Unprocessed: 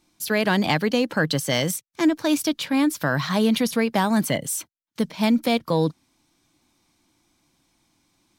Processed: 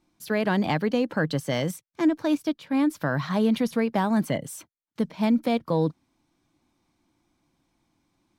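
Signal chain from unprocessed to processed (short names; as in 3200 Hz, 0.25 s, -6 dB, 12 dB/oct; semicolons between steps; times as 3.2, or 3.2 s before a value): high shelf 2400 Hz -11 dB; 2.35–2.75 upward expander 1.5:1, over -35 dBFS; gain -2 dB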